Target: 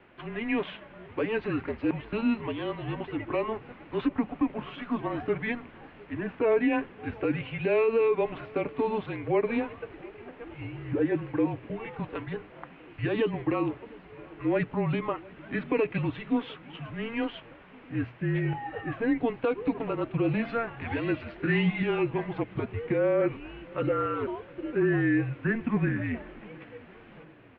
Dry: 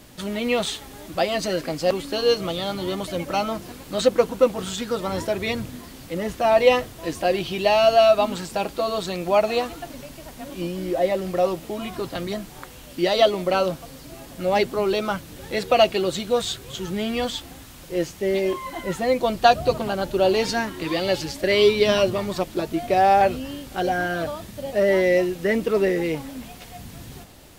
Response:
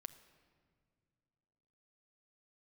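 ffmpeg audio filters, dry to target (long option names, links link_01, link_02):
-filter_complex "[0:a]bandreject=frequency=50:width_type=h:width=6,bandreject=frequency=100:width_type=h:width=6,bandreject=frequency=150:width_type=h:width=6,bandreject=frequency=200:width_type=h:width=6,bandreject=frequency=250:width_type=h:width=6,bandreject=frequency=300:width_type=h:width=6,bandreject=frequency=350:width_type=h:width=6,alimiter=limit=-13dB:level=0:latency=1:release=104,highpass=frequency=380:width_type=q:width=0.5412,highpass=frequency=380:width_type=q:width=1.307,lowpass=frequency=2800:width_type=q:width=0.5176,lowpass=frequency=2800:width_type=q:width=0.7071,lowpass=frequency=2800:width_type=q:width=1.932,afreqshift=-230,asettb=1/sr,asplit=3[link_01][link_02][link_03];[link_01]atrim=end=21.404[link_04];[link_02]atrim=start=21.4:end=21.83,asetpts=PTS-STARTPTS,afade=type=in:duration=0.004:curve=qsin,afade=type=out:start_time=0.426:duration=0.004:curve=qsin,asplit=2[link_05][link_06];[link_06]adelay=18,volume=-3.5dB[link_07];[link_05][link_07]amix=inputs=2:normalize=0,atrim=end_sample=18963[link_08];[link_03]atrim=start=21.826[link_09];[link_04][link_08]acrossfade=duration=0.004:curve1=hsin:curve2=qsin[link_10];[link_10][link_09]acrossfade=duration=0.004:curve1=qsin:curve2=hsin,asplit=2[link_11][link_12];[link_12]adelay=707,lowpass=frequency=2000:poles=1,volume=-23dB,asplit=2[link_13][link_14];[link_14]adelay=707,lowpass=frequency=2000:poles=1,volume=0.53,asplit=2[link_15][link_16];[link_16]adelay=707,lowpass=frequency=2000:poles=1,volume=0.53,asplit=2[link_17][link_18];[link_18]adelay=707,lowpass=frequency=2000:poles=1,volume=0.53[link_19];[link_11][link_13][link_15][link_17][link_19]amix=inputs=5:normalize=0,volume=-3dB"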